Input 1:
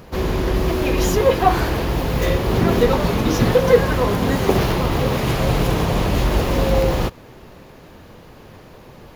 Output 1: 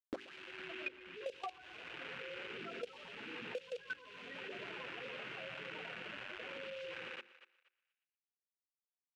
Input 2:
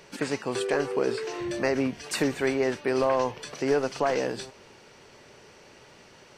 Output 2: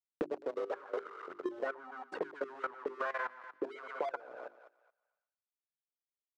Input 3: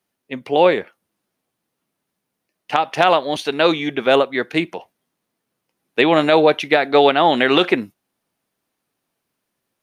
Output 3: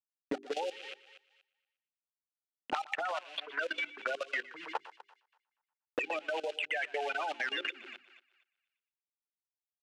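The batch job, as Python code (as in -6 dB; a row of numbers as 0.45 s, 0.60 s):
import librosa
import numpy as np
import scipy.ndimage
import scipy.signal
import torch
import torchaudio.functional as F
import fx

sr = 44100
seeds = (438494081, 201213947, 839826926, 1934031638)

y = fx.spec_gate(x, sr, threshold_db=-10, keep='strong')
y = np.where(np.abs(y) >= 10.0 ** (-29.0 / 20.0), y, 0.0)
y = fx.peak_eq(y, sr, hz=1500.0, db=7.0, octaves=0.36)
y = fx.auto_wah(y, sr, base_hz=220.0, top_hz=2700.0, q=4.0, full_db=-19.0, direction='up')
y = 10.0 ** (-22.5 / 20.0) * np.tanh(y / 10.0 ** (-22.5 / 20.0))
y = fx.echo_thinned(y, sr, ms=119, feedback_pct=32, hz=410.0, wet_db=-9.0)
y = fx.level_steps(y, sr, step_db=20)
y = scipy.signal.sosfilt(scipy.signal.butter(2, 8500.0, 'lowpass', fs=sr, output='sos'), y)
y = fx.low_shelf(y, sr, hz=100.0, db=-11.0)
y = fx.hum_notches(y, sr, base_hz=50, count=8)
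y = fx.band_squash(y, sr, depth_pct=100)
y = F.gain(torch.from_numpy(y), 6.5).numpy()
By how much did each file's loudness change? -27.0 LU, -13.0 LU, -19.5 LU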